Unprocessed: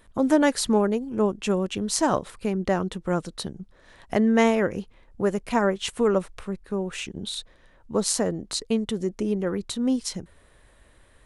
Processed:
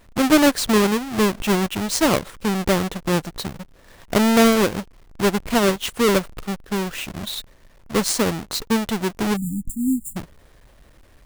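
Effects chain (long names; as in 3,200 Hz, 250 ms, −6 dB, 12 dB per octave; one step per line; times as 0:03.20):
each half-wave held at its own peak
time-frequency box erased 0:09.36–0:10.17, 290–7,000 Hz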